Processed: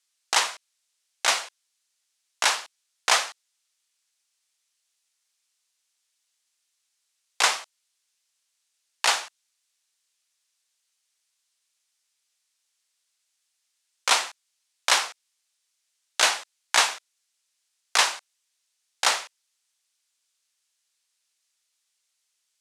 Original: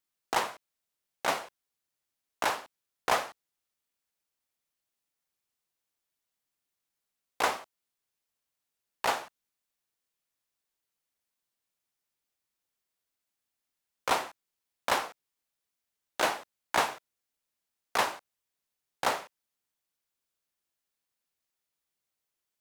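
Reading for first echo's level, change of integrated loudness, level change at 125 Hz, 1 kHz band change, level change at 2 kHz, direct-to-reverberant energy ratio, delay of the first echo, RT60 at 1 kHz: no echo audible, +8.0 dB, below −10 dB, +2.5 dB, +8.0 dB, no reverb audible, no echo audible, no reverb audible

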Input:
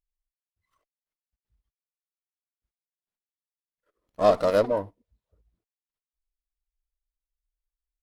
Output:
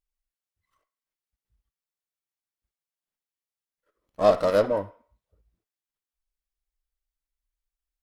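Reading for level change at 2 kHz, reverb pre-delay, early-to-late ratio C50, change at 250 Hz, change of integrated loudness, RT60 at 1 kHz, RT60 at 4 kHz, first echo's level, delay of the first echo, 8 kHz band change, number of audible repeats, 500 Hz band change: +0.5 dB, 3 ms, 15.0 dB, 0.0 dB, +0.5 dB, 0.55 s, 0.55 s, no echo audible, no echo audible, can't be measured, no echo audible, +0.5 dB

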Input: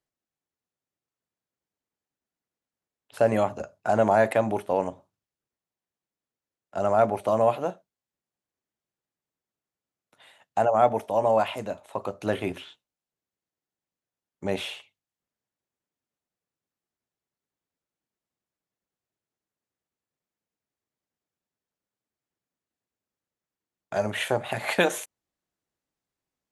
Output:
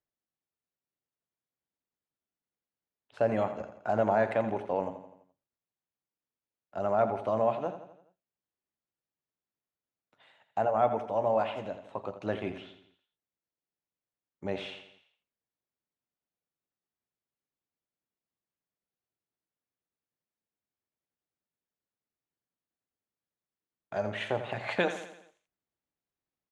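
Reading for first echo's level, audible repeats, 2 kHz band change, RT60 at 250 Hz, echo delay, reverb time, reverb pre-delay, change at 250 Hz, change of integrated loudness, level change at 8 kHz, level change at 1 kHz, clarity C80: −11.0 dB, 5, −6.0 dB, no reverb audible, 84 ms, no reverb audible, no reverb audible, −5.0 dB, −5.5 dB, can't be measured, −5.5 dB, no reverb audible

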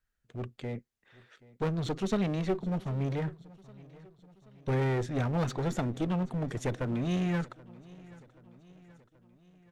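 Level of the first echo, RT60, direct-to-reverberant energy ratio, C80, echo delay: −21.5 dB, no reverb audible, no reverb audible, no reverb audible, 779 ms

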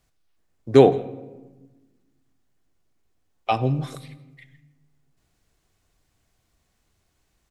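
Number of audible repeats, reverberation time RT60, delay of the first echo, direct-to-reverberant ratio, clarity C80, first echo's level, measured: 1, 1.2 s, 166 ms, 11.0 dB, 16.5 dB, −23.0 dB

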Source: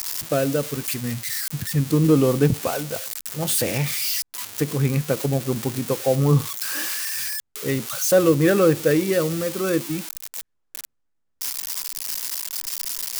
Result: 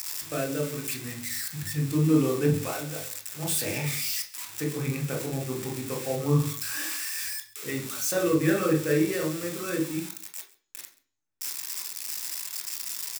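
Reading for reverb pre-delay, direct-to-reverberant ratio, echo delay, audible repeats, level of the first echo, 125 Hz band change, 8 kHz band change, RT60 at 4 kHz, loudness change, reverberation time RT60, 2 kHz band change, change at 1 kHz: 18 ms, 2.0 dB, 133 ms, 1, −21.0 dB, −6.5 dB, −4.5 dB, 0.45 s, −6.0 dB, 0.45 s, −4.0 dB, −6.5 dB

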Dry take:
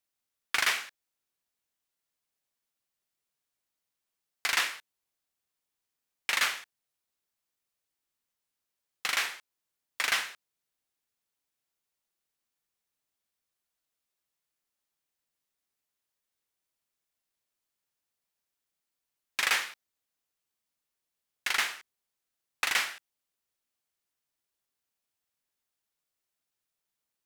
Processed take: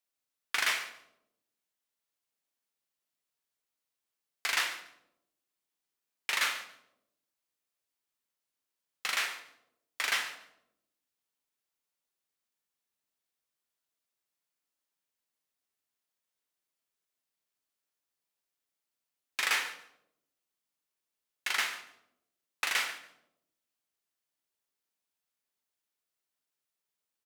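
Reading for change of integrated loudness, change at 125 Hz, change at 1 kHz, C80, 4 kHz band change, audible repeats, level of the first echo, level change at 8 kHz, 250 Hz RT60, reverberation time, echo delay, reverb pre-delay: −2.5 dB, can't be measured, −2.0 dB, 12.5 dB, −2.0 dB, 2, −18.0 dB, −2.5 dB, 1.1 s, 0.85 s, 142 ms, 5 ms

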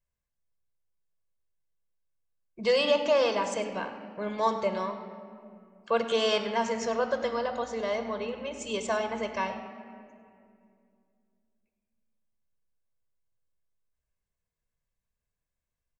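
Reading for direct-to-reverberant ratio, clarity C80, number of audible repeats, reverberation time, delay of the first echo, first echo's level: 7.0 dB, 9.0 dB, 1, 2.4 s, 100 ms, −15.5 dB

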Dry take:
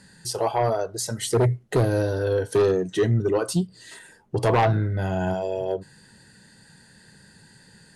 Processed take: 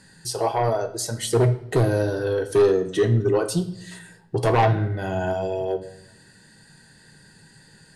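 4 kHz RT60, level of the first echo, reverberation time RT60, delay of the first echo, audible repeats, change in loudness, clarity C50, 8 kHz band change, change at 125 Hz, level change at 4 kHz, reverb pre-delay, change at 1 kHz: 0.70 s, no echo audible, 0.80 s, no echo audible, no echo audible, +1.5 dB, 13.5 dB, +0.5 dB, +1.0 dB, +1.0 dB, 3 ms, +1.0 dB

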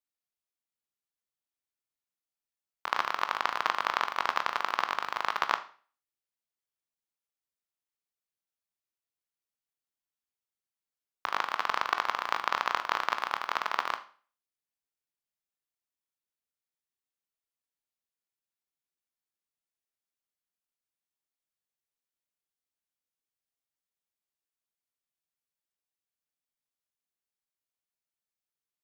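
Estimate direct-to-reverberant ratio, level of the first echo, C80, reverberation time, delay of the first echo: 9.0 dB, no echo audible, 19.5 dB, 0.40 s, no echo audible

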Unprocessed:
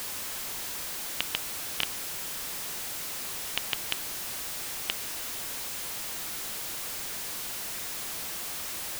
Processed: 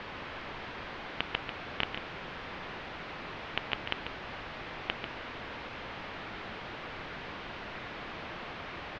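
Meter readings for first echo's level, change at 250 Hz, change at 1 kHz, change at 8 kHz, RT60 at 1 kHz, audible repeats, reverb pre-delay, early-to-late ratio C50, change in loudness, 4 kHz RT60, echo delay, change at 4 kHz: −8.5 dB, +4.0 dB, +3.0 dB, below −30 dB, no reverb audible, 1, no reverb audible, no reverb audible, −7.5 dB, no reverb audible, 142 ms, −6.0 dB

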